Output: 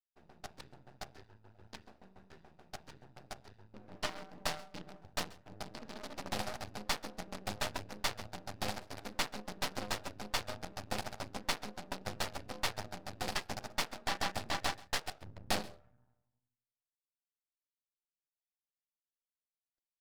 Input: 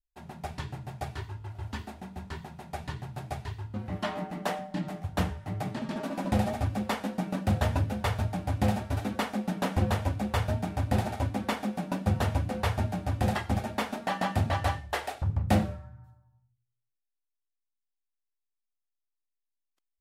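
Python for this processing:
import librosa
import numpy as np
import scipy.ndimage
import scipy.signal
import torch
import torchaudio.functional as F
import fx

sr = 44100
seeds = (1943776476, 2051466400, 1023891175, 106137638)

p1 = fx.wiener(x, sr, points=41)
p2 = fx.highpass(p1, sr, hz=1400.0, slope=6)
p3 = fx.peak_eq(p2, sr, hz=4800.0, db=9.0, octaves=0.77)
p4 = np.maximum(p3, 0.0)
p5 = p4 + fx.echo_single(p4, sr, ms=133, db=-21.5, dry=0)
y = p5 * librosa.db_to_amplitude(4.5)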